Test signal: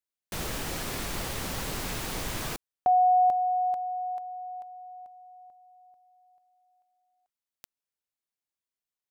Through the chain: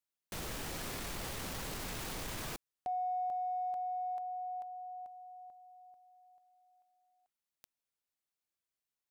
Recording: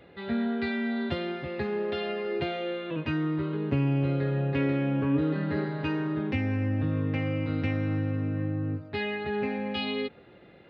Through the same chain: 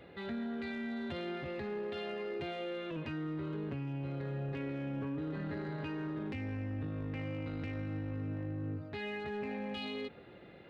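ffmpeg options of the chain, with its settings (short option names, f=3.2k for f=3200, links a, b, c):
-af "acompressor=threshold=-34dB:ratio=6:attack=0.15:release=40:knee=6:detection=peak,volume=-1dB"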